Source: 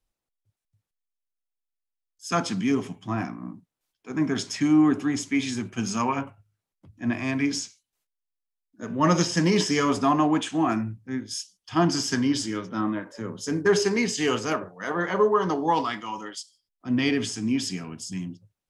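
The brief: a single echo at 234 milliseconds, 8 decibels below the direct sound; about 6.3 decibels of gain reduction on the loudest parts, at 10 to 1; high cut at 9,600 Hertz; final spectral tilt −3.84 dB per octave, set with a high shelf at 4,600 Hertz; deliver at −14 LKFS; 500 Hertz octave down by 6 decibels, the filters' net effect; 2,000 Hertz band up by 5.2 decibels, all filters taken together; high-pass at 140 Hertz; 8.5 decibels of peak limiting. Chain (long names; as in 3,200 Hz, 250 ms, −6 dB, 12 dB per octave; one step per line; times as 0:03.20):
high-pass filter 140 Hz
low-pass filter 9,600 Hz
parametric band 500 Hz −8.5 dB
parametric band 2,000 Hz +7.5 dB
high-shelf EQ 4,600 Hz −4 dB
downward compressor 10 to 1, threshold −24 dBFS
brickwall limiter −22 dBFS
single-tap delay 234 ms −8 dB
level +17.5 dB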